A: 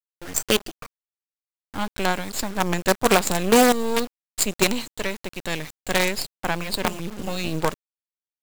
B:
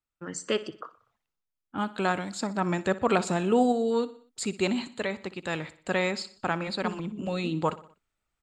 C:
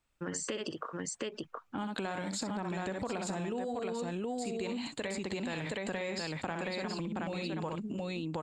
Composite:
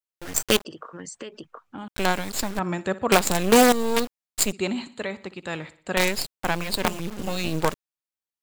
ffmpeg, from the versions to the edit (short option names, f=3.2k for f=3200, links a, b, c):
-filter_complex "[1:a]asplit=2[a][b];[0:a]asplit=4[c][d][e][f];[c]atrim=end=0.652[g];[2:a]atrim=start=0.648:end=1.882[h];[d]atrim=start=1.878:end=2.592[i];[a]atrim=start=2.588:end=3.122[j];[e]atrim=start=3.118:end=4.522[k];[b]atrim=start=4.518:end=5.972[l];[f]atrim=start=5.968[m];[g][h]acrossfade=d=0.004:c1=hsin:c2=hsin[n];[n][i]acrossfade=d=0.004:c1=hsin:c2=hsin[o];[o][j]acrossfade=d=0.004:c1=hsin:c2=hsin[p];[p][k]acrossfade=d=0.004:c1=hsin:c2=hsin[q];[q][l]acrossfade=d=0.004:c1=hsin:c2=hsin[r];[r][m]acrossfade=d=0.004:c1=hsin:c2=hsin"